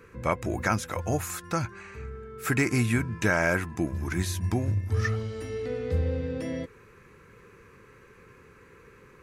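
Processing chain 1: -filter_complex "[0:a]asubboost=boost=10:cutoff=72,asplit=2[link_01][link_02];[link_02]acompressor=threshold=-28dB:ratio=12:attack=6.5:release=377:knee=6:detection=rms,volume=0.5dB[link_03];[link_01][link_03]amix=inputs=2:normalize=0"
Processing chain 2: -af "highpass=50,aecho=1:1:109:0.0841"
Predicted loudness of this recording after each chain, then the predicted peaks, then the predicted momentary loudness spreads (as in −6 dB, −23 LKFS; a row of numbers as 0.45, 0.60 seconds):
−23.0, −28.5 LKFS; −6.5, −9.5 dBFS; 11, 12 LU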